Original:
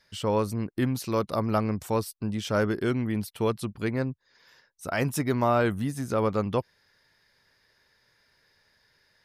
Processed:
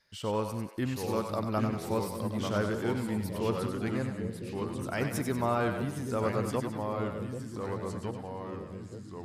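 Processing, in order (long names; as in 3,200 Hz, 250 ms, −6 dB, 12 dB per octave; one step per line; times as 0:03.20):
0:03.82–0:04.99: surface crackle 25 per second −52 dBFS
echo with a time of its own for lows and highs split 530 Hz, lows 787 ms, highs 94 ms, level −6.5 dB
delay with pitch and tempo change per echo 702 ms, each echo −2 semitones, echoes 2, each echo −6 dB
level −6 dB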